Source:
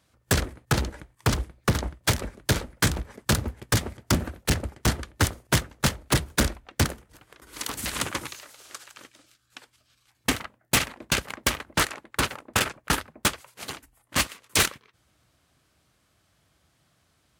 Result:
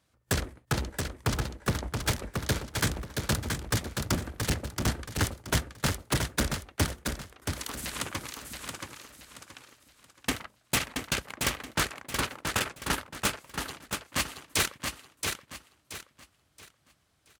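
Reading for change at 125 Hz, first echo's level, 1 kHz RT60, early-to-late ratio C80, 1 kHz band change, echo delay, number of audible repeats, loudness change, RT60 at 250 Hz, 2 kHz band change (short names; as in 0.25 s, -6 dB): -4.0 dB, -5.0 dB, none, none, -4.0 dB, 0.676 s, 3, -5.0 dB, none, -4.0 dB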